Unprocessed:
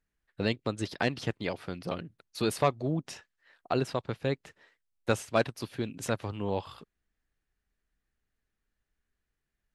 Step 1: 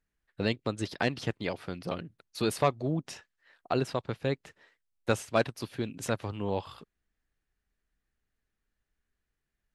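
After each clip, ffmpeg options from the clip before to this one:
-af anull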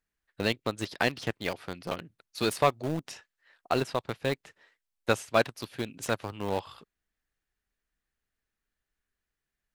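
-filter_complex "[0:a]lowshelf=f=420:g=-6,asplit=2[a][b];[b]aeval=exprs='val(0)*gte(abs(val(0)),0.0299)':c=same,volume=-4dB[c];[a][c]amix=inputs=2:normalize=0"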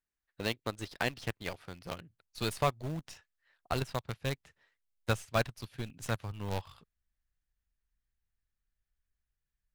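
-filter_complex "[0:a]asplit=2[a][b];[b]acrusher=bits=4:dc=4:mix=0:aa=0.000001,volume=-7dB[c];[a][c]amix=inputs=2:normalize=0,asubboost=boost=5:cutoff=140,volume=-8.5dB"

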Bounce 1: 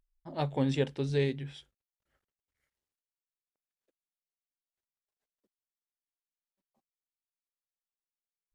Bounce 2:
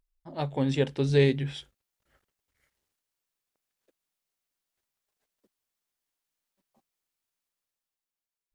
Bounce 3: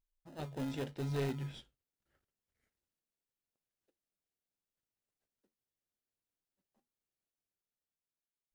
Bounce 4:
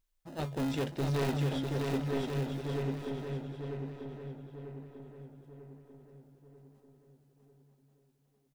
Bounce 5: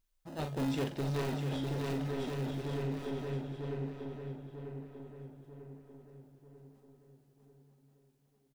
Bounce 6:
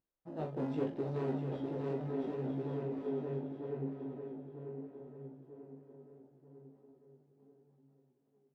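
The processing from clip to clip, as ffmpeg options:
-af "dynaudnorm=f=160:g=13:m=9.5dB"
-filter_complex "[0:a]asplit=2[a][b];[b]acrusher=samples=39:mix=1:aa=0.000001,volume=-5dB[c];[a][c]amix=inputs=2:normalize=0,asoftclip=type=tanh:threshold=-18.5dB,flanger=delay=7.6:depth=4.2:regen=-69:speed=0.83:shape=triangular,volume=-8dB"
-filter_complex "[0:a]asplit=2[a][b];[b]adelay=943,lowpass=f=2k:p=1,volume=-5dB,asplit=2[c][d];[d]adelay=943,lowpass=f=2k:p=1,volume=0.5,asplit=2[e][f];[f]adelay=943,lowpass=f=2k:p=1,volume=0.5,asplit=2[g][h];[h]adelay=943,lowpass=f=2k:p=1,volume=0.5,asplit=2[i][j];[j]adelay=943,lowpass=f=2k:p=1,volume=0.5,asplit=2[k][l];[l]adelay=943,lowpass=f=2k:p=1,volume=0.5[m];[c][e][g][i][k][m]amix=inputs=6:normalize=0[n];[a][n]amix=inputs=2:normalize=0,asoftclip=type=hard:threshold=-36dB,asplit=2[o][p];[p]aecho=0:1:650|1138|1503|1777|1983:0.631|0.398|0.251|0.158|0.1[q];[o][q]amix=inputs=2:normalize=0,volume=7.5dB"
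-filter_complex "[0:a]alimiter=level_in=6dB:limit=-24dB:level=0:latency=1:release=20,volume=-6dB,asplit=2[a][b];[b]adelay=44,volume=-8dB[c];[a][c]amix=inputs=2:normalize=0"
-af "flanger=delay=15:depth=5.1:speed=0.76,bandpass=f=380:t=q:w=0.79:csg=0,volume=4.5dB"

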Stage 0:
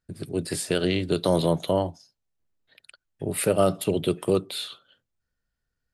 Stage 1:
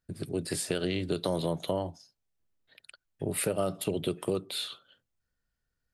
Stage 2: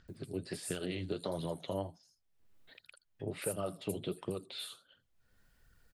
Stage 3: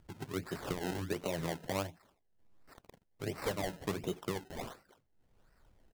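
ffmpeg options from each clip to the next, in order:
-af "acompressor=threshold=-26dB:ratio=3,volume=-1.5dB"
-filter_complex "[0:a]acompressor=mode=upward:threshold=-41dB:ratio=2.5,flanger=delay=0.6:depth=9.6:regen=33:speed=1.4:shape=sinusoidal,acrossover=split=5800[a][b];[b]adelay=80[c];[a][c]amix=inputs=2:normalize=0,volume=-3.5dB"
-af "acrusher=samples=26:mix=1:aa=0.000001:lfo=1:lforange=26:lforate=1.4,volume=1dB"

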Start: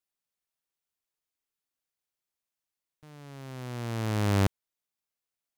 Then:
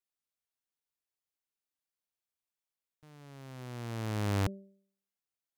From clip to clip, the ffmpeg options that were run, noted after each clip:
-af "bandreject=f=195.5:t=h:w=4,bandreject=f=391:t=h:w=4,bandreject=f=586.5:t=h:w=4,volume=-5.5dB"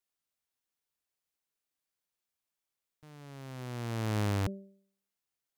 -af "alimiter=level_in=3.5dB:limit=-24dB:level=0:latency=1:release=14,volume=-3.5dB,volume=3dB"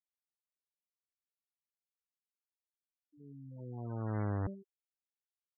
-af "acrusher=bits=7:mix=0:aa=0.5,afftfilt=real='re*gte(hypot(re,im),0.0178)':imag='im*gte(hypot(re,im),0.0178)':win_size=1024:overlap=0.75,volume=-4dB"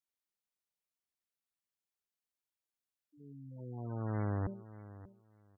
-af "aecho=1:1:587|1174:0.15|0.0269"

